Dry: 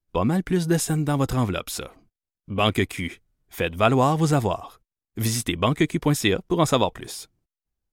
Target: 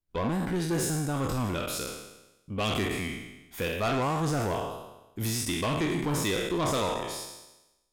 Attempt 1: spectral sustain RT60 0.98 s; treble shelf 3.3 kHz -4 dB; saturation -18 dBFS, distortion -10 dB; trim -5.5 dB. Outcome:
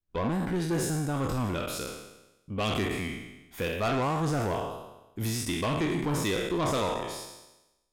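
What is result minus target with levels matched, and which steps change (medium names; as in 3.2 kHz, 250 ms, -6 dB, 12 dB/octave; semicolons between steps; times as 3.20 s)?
8 kHz band -2.5 dB
remove: treble shelf 3.3 kHz -4 dB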